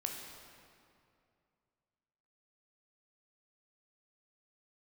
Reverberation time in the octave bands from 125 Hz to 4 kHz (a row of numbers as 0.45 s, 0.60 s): 2.9 s, 2.6 s, 2.5 s, 2.4 s, 2.0 s, 1.7 s